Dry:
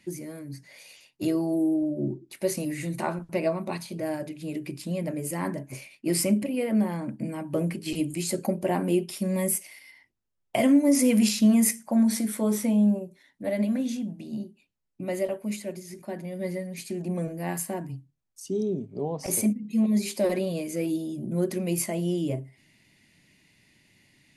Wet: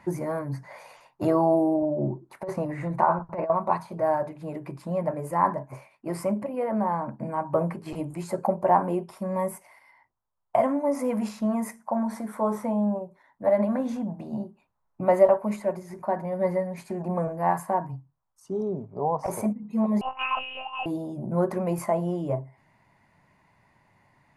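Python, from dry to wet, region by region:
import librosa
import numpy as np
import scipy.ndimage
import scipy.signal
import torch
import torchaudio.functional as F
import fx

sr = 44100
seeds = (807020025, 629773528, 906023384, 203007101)

y = fx.chain(x, sr, fx.lowpass(hz=2600.0, slope=6),
    fx.over_compress(threshold_db=-29.0, ratio=-0.5), at=(2.43, 3.5))
y = fx.chain(y, sr, fx.freq_invert(carrier_hz=3100),
    fx.lpc_monotone(seeds[0], pitch_hz=260.0, order=10), at=(20.01, 20.86))
y = fx.curve_eq(y, sr, hz=(120.0, 310.0, 990.0, 2900.0), db=(0, -7, 15, -15))
y = fx.rider(y, sr, range_db=10, speed_s=2.0)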